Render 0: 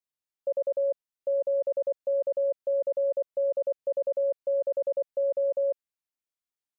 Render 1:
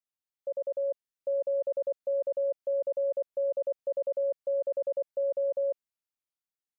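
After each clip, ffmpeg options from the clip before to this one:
-af "dynaudnorm=f=180:g=9:m=1.41,volume=0.531"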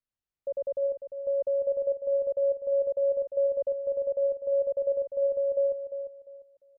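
-filter_complex "[0:a]aemphasis=mode=reproduction:type=bsi,asplit=2[s0][s1];[s1]aecho=0:1:349|698|1047:0.355|0.0923|0.024[s2];[s0][s2]amix=inputs=2:normalize=0"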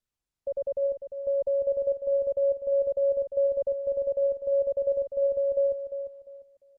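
-af "lowshelf=f=190:g=10.5" -ar 48000 -c:a libopus -b:a 32k

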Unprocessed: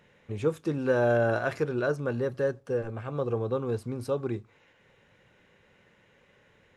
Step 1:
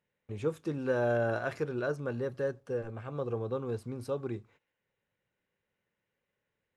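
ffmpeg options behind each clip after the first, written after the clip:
-af "agate=range=0.126:threshold=0.002:ratio=16:detection=peak,volume=0.562"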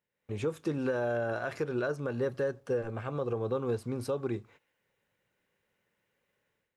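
-af "lowshelf=f=200:g=-4,alimiter=level_in=1.78:limit=0.0631:level=0:latency=1:release=198,volume=0.562,dynaudnorm=f=100:g=5:m=3.55,volume=0.596"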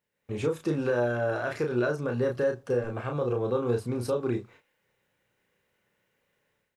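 -filter_complex "[0:a]asplit=2[s0][s1];[s1]adelay=33,volume=0.596[s2];[s0][s2]amix=inputs=2:normalize=0,volume=1.41"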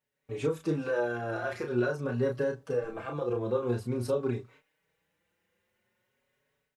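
-filter_complex "[0:a]asplit=2[s0][s1];[s1]adelay=4.9,afreqshift=0.47[s2];[s0][s2]amix=inputs=2:normalize=1"

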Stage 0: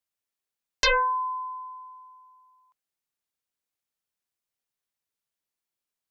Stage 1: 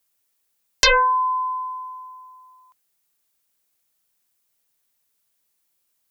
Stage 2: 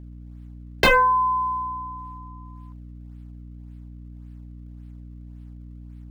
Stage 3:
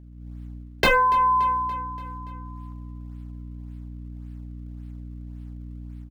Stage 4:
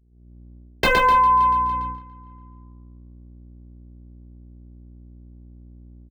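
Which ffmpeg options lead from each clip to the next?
-filter_complex "[0:a]highshelf=f=7500:g=10,asplit=2[s0][s1];[s1]acompressor=threshold=0.0282:ratio=6,volume=1.26[s2];[s0][s2]amix=inputs=2:normalize=0,volume=1.41"
-filter_complex "[0:a]acrossover=split=540|3400[s0][s1][s2];[s2]acrusher=samples=32:mix=1:aa=0.000001:lfo=1:lforange=51.2:lforate=1.8[s3];[s0][s1][s3]amix=inputs=3:normalize=0,aeval=exprs='val(0)+0.0112*(sin(2*PI*60*n/s)+sin(2*PI*2*60*n/s)/2+sin(2*PI*3*60*n/s)/3+sin(2*PI*4*60*n/s)/4+sin(2*PI*5*60*n/s)/5)':c=same"
-af "dynaudnorm=f=140:g=3:m=2.66,aecho=1:1:287|574|861|1148|1435:0.119|0.0689|0.04|0.0232|0.0134,volume=0.562"
-af "anlmdn=0.631,aecho=1:1:116.6|253.6:0.631|0.251,agate=range=0.282:threshold=0.0398:ratio=16:detection=peak"

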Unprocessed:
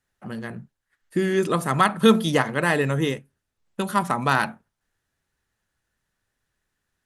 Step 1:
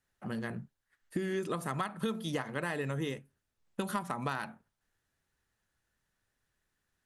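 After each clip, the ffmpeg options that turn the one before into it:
-af "acompressor=threshold=0.0447:ratio=12,volume=0.668"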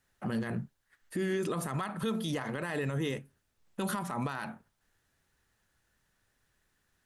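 -af "alimiter=level_in=2.24:limit=0.0631:level=0:latency=1:release=33,volume=0.447,volume=2.11"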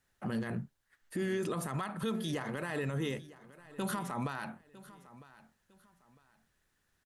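-af "aecho=1:1:954|1908:0.119|0.0333,volume=0.794"

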